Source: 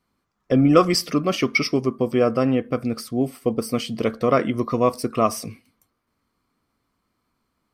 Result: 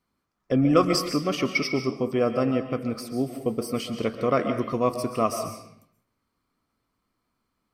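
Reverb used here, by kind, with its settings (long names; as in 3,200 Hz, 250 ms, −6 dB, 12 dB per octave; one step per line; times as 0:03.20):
comb and all-pass reverb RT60 0.68 s, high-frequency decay 0.85×, pre-delay 95 ms, DRR 7.5 dB
level −4.5 dB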